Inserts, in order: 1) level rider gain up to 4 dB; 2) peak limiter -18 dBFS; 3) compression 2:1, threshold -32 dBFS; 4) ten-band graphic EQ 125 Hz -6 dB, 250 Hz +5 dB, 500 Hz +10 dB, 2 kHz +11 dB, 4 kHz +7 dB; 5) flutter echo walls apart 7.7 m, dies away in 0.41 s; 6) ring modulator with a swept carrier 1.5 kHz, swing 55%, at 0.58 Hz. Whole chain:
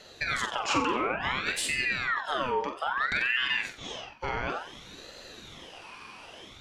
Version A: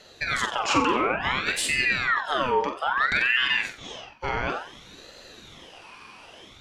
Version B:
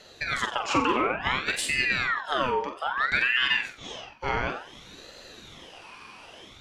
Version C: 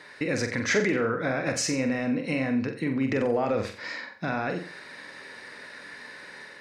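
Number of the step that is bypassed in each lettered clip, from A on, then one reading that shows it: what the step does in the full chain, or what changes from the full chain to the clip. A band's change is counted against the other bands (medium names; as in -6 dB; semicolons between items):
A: 3, momentary loudness spread change -6 LU; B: 2, mean gain reduction 3.0 dB; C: 6, momentary loudness spread change -2 LU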